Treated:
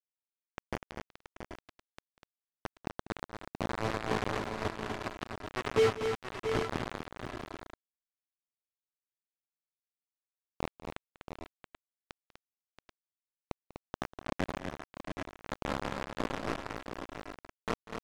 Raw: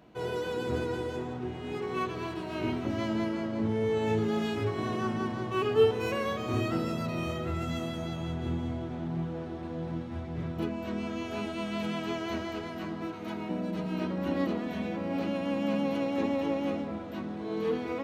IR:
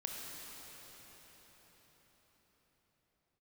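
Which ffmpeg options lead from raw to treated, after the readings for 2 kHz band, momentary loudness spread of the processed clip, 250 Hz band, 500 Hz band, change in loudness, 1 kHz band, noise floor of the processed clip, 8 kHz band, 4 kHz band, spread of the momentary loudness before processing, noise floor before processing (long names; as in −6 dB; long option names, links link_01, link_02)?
−2.0 dB, 16 LU, −11.5 dB, −6.5 dB, −5.0 dB, −3.5 dB, below −85 dBFS, 0.0 dB, −4.0 dB, 8 LU, −39 dBFS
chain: -filter_complex "[0:a]lowpass=frequency=1700:width=0.5412,lowpass=frequency=1700:width=1.3066,equalizer=frequency=800:width_type=o:width=0.34:gain=-7.5,acrusher=bits=3:mix=0:aa=0.000001,asoftclip=type=tanh:threshold=-13dB,adynamicsmooth=sensitivity=2:basefreq=1100,asplit=2[link_01][link_02];[link_02]aecho=0:1:194|247|678|782|785:0.15|0.473|0.355|0.178|0.282[link_03];[link_01][link_03]amix=inputs=2:normalize=0,volume=-2dB"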